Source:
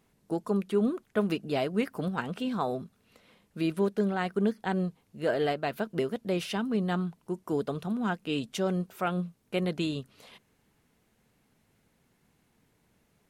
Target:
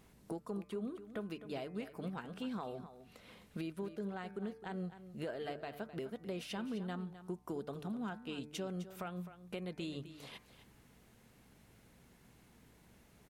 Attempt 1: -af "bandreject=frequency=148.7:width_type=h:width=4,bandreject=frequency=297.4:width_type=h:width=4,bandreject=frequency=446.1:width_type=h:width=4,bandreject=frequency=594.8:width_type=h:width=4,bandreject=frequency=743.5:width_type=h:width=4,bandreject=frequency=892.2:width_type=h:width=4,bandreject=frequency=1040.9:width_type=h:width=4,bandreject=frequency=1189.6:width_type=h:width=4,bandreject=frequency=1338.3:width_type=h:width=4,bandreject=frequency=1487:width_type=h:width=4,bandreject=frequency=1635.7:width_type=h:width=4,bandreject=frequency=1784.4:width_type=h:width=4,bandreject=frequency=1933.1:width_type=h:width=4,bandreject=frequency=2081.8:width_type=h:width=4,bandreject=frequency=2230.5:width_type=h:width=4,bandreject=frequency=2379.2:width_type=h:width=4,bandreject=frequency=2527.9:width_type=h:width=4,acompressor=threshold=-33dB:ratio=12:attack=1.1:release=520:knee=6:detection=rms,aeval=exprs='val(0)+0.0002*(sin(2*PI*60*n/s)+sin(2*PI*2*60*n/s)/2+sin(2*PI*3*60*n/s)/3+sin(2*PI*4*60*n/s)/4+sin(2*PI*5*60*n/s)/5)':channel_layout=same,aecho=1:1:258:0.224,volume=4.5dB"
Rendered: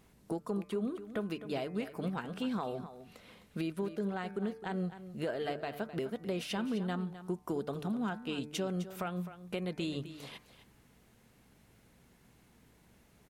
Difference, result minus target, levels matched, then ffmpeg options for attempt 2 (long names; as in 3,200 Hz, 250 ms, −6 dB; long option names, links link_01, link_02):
downward compressor: peak gain reduction −6 dB
-af "bandreject=frequency=148.7:width_type=h:width=4,bandreject=frequency=297.4:width_type=h:width=4,bandreject=frequency=446.1:width_type=h:width=4,bandreject=frequency=594.8:width_type=h:width=4,bandreject=frequency=743.5:width_type=h:width=4,bandreject=frequency=892.2:width_type=h:width=4,bandreject=frequency=1040.9:width_type=h:width=4,bandreject=frequency=1189.6:width_type=h:width=4,bandreject=frequency=1338.3:width_type=h:width=4,bandreject=frequency=1487:width_type=h:width=4,bandreject=frequency=1635.7:width_type=h:width=4,bandreject=frequency=1784.4:width_type=h:width=4,bandreject=frequency=1933.1:width_type=h:width=4,bandreject=frequency=2081.8:width_type=h:width=4,bandreject=frequency=2230.5:width_type=h:width=4,bandreject=frequency=2379.2:width_type=h:width=4,bandreject=frequency=2527.9:width_type=h:width=4,acompressor=threshold=-39.5dB:ratio=12:attack=1.1:release=520:knee=6:detection=rms,aeval=exprs='val(0)+0.0002*(sin(2*PI*60*n/s)+sin(2*PI*2*60*n/s)/2+sin(2*PI*3*60*n/s)/3+sin(2*PI*4*60*n/s)/4+sin(2*PI*5*60*n/s)/5)':channel_layout=same,aecho=1:1:258:0.224,volume=4.5dB"